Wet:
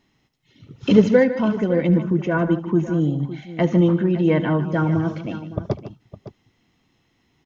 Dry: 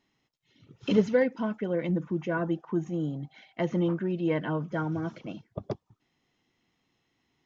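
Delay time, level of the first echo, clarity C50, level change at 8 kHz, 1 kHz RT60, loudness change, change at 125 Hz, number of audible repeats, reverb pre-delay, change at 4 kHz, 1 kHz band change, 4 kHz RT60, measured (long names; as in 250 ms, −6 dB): 74 ms, −18.0 dB, no reverb audible, can't be measured, no reverb audible, +9.5 dB, +11.5 dB, 3, no reverb audible, +8.0 dB, +8.0 dB, no reverb audible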